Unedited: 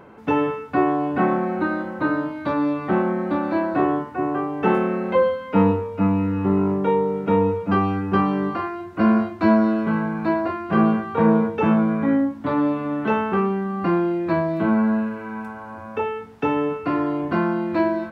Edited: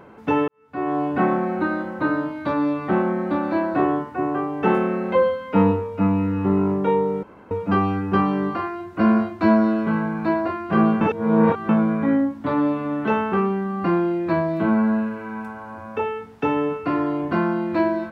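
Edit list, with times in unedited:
0.48–0.98 s: fade in quadratic
7.23–7.51 s: room tone
11.01–11.69 s: reverse

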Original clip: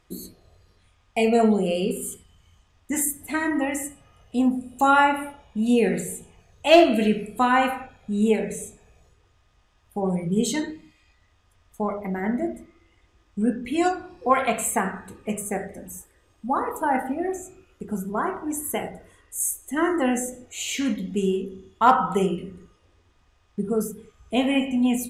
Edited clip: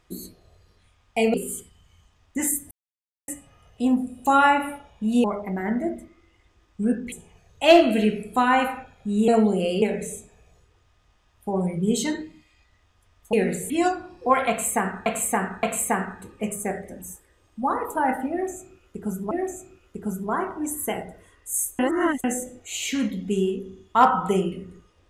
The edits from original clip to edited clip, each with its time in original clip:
1.34–1.88 s: move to 8.31 s
3.25–3.82 s: mute
5.78–6.15 s: swap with 11.82–13.70 s
14.49–15.06 s: loop, 3 plays
17.17–18.17 s: loop, 2 plays
19.65–20.10 s: reverse

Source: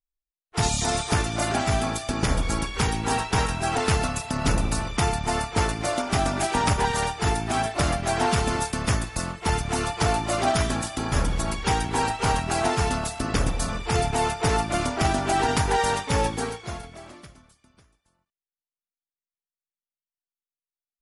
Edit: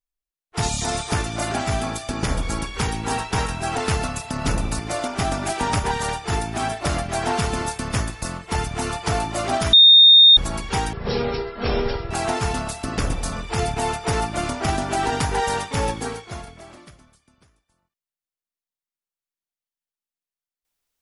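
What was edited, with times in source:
4.79–5.73 s: delete
10.67–11.31 s: bleep 3.67 kHz -6.5 dBFS
11.87–12.47 s: speed 51%

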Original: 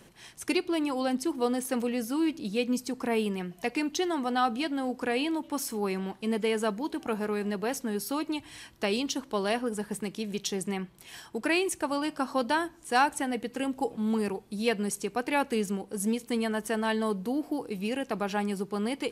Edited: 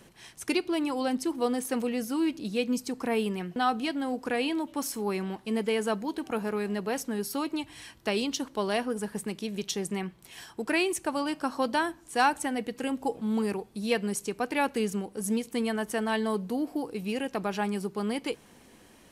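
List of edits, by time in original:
3.56–4.32 s: delete

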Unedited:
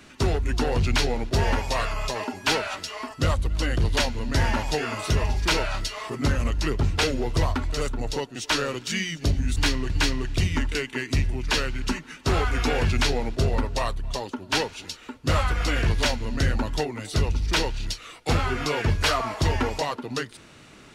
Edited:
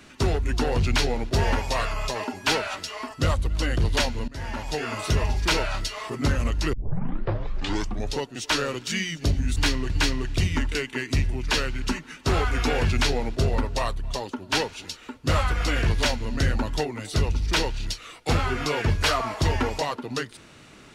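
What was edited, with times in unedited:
4.28–4.97 s: fade in, from -20.5 dB
6.73 s: tape start 1.45 s

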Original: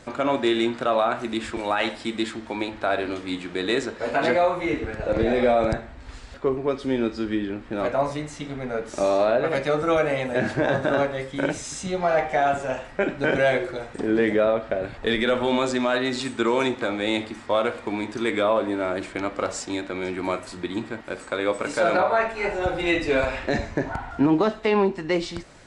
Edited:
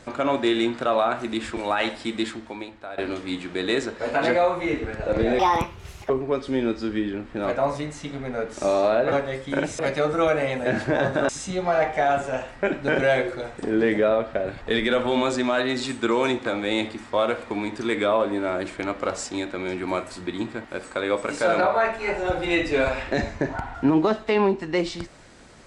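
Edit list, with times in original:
2.29–2.98 s: fade out quadratic, to -13.5 dB
5.39–6.46 s: speed 151%
10.98–11.65 s: move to 9.48 s

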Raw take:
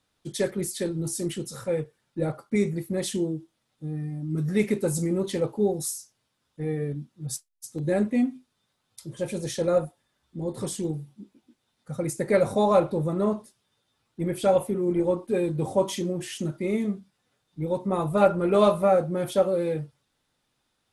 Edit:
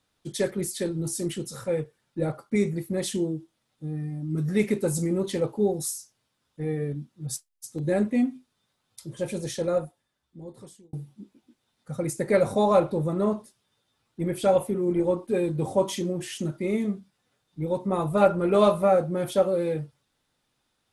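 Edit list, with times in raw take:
9.31–10.93 s: fade out

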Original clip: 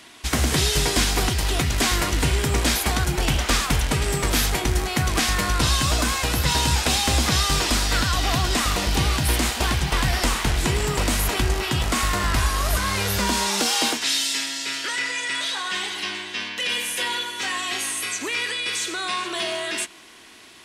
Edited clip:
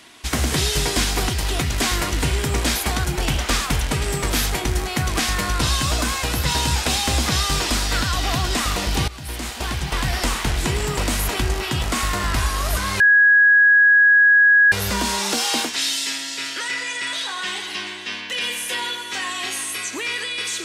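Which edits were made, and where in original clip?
9.08–10.52 s: fade in equal-power, from -18 dB
13.00 s: add tone 1.66 kHz -9.5 dBFS 1.72 s

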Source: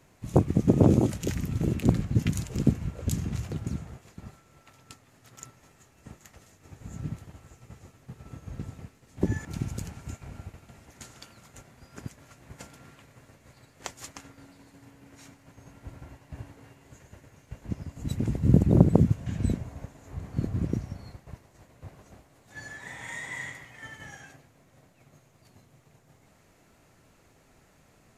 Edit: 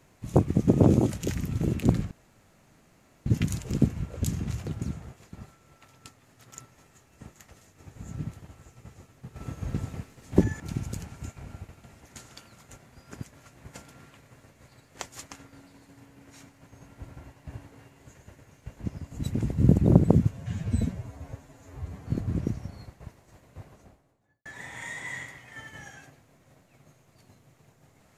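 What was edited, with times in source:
2.11 s: insert room tone 1.15 s
8.21–9.29 s: gain +6.5 dB
19.16–20.33 s: stretch 1.5×
21.86–22.72 s: studio fade out

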